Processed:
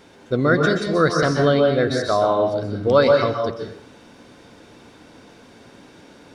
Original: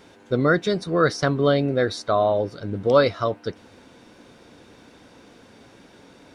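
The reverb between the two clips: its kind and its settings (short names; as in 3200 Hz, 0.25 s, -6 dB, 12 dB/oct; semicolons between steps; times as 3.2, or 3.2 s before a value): plate-style reverb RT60 0.6 s, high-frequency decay 0.8×, pre-delay 0.115 s, DRR 2 dB; gain +1 dB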